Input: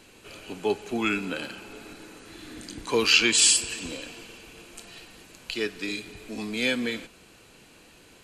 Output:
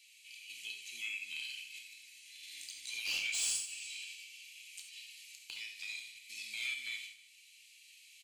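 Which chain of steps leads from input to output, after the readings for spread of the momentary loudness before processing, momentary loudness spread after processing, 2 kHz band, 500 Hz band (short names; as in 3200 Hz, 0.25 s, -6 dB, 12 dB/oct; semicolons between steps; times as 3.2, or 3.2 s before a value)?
25 LU, 20 LU, -11.5 dB, under -40 dB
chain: gate -42 dBFS, range -9 dB; elliptic high-pass 2200 Hz, stop band 40 dB; dynamic EQ 4000 Hz, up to -4 dB, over -37 dBFS, Q 1.3; compressor 2:1, threshold -56 dBFS, peak gain reduction 20.5 dB; soft clip -37.5 dBFS, distortion -14 dB; tremolo saw up 0.56 Hz, depth 40%; feedback echo 0.154 s, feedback 34%, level -16 dB; non-linear reverb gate 0.11 s flat, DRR 2.5 dB; gain +7.5 dB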